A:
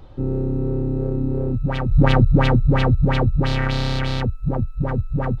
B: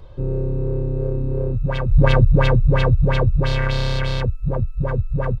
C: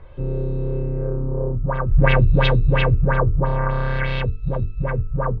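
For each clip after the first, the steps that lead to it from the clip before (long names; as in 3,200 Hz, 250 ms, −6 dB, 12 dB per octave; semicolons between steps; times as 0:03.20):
comb filter 1.9 ms, depth 59%; level −1 dB
mains-hum notches 50/100/150/200/250/300/350/400/450 Hz; auto-filter low-pass sine 0.5 Hz 990–3,600 Hz; highs frequency-modulated by the lows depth 0.11 ms; level −1 dB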